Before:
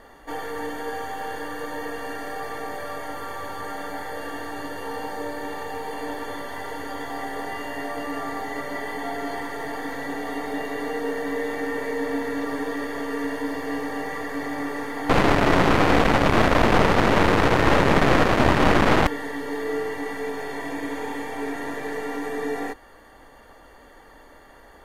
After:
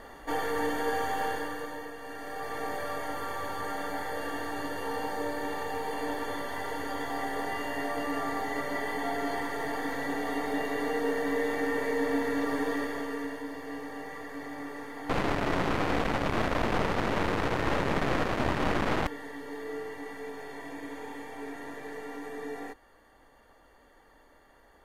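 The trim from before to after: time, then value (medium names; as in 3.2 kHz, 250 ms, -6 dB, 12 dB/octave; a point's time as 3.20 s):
1.24 s +1 dB
1.96 s -11 dB
2.65 s -2 dB
12.75 s -2 dB
13.46 s -10.5 dB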